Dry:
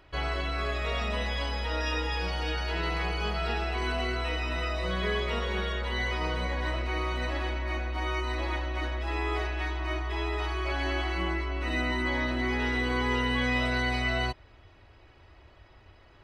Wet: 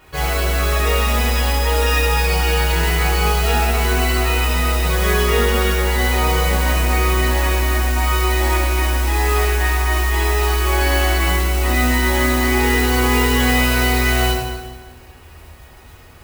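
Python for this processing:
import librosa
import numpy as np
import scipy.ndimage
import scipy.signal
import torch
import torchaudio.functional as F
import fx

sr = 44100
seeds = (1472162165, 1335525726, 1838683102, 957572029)

y = fx.mod_noise(x, sr, seeds[0], snr_db=11)
y = fx.rev_fdn(y, sr, rt60_s=1.4, lf_ratio=1.2, hf_ratio=0.9, size_ms=38.0, drr_db=-5.0)
y = y * 10.0 ** (6.0 / 20.0)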